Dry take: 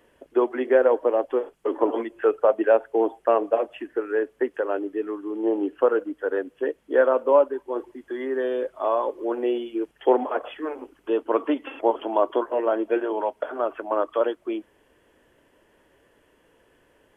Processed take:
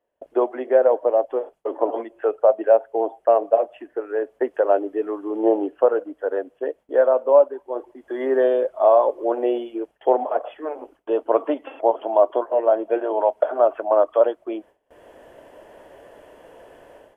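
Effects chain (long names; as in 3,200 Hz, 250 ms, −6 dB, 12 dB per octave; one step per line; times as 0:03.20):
parametric band 660 Hz +14.5 dB 1 octave
automatic gain control
noise gate with hold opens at −38 dBFS
level −4 dB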